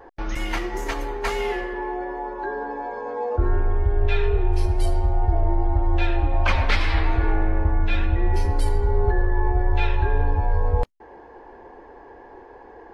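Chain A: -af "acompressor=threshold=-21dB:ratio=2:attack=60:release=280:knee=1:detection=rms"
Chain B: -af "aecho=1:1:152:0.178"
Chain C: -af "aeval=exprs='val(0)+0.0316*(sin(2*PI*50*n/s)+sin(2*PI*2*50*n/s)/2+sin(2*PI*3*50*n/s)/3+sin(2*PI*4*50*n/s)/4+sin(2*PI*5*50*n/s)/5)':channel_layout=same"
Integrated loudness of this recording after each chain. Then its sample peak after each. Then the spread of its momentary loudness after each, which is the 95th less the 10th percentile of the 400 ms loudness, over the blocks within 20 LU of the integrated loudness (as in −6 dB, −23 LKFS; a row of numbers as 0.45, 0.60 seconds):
−27.0, −24.5, −25.0 LKFS; −10.5, −8.5, −8.0 dBFS; 19, 7, 11 LU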